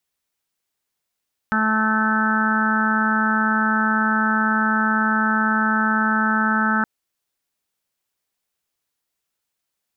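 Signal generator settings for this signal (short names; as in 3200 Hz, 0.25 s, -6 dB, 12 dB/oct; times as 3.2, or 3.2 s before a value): steady additive tone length 5.32 s, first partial 218 Hz, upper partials -17/-14.5/-5/-14/-1/-1/-8 dB, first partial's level -21 dB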